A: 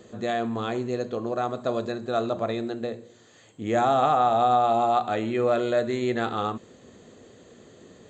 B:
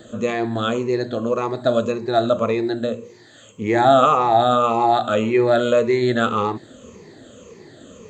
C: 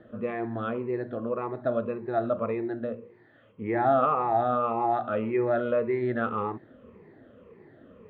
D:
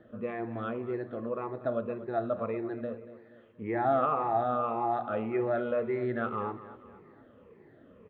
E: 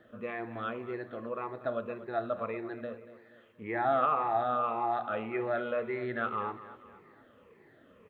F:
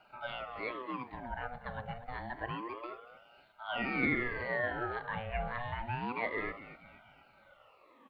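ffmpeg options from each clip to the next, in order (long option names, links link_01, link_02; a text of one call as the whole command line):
ffmpeg -i in.wav -af "afftfilt=real='re*pow(10,13/40*sin(2*PI*(0.81*log(max(b,1)*sr/1024/100)/log(2)-(-1.8)*(pts-256)/sr)))':imag='im*pow(10,13/40*sin(2*PI*(0.81*log(max(b,1)*sr/1024/100)/log(2)-(-1.8)*(pts-256)/sr)))':win_size=1024:overlap=0.75,bandreject=frequency=730:width=12,volume=5.5dB" out.wav
ffmpeg -i in.wav -af "lowpass=frequency=2200:width=0.5412,lowpass=frequency=2200:width=1.3066,volume=-9dB" out.wav
ffmpeg -i in.wav -af "aecho=1:1:238|476|714|952:0.178|0.08|0.036|0.0162,volume=-4dB" out.wav
ffmpeg -i in.wav -af "tiltshelf=frequency=930:gain=-6" out.wav
ffmpeg -i in.wav -af "asuperstop=centerf=660:order=8:qfactor=2.1,aeval=exprs='val(0)*sin(2*PI*710*n/s+710*0.55/0.28*sin(2*PI*0.28*n/s))':channel_layout=same,volume=1dB" out.wav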